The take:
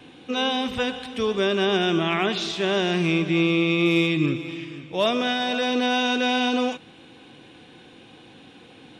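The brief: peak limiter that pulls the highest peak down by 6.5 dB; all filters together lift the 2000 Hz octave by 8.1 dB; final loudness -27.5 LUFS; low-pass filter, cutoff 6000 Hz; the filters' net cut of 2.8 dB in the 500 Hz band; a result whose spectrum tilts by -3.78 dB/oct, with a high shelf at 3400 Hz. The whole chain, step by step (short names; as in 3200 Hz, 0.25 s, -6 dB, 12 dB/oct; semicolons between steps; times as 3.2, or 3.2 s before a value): LPF 6000 Hz; bell 500 Hz -4.5 dB; bell 2000 Hz +8.5 dB; high shelf 3400 Hz +8 dB; gain -6.5 dB; limiter -18 dBFS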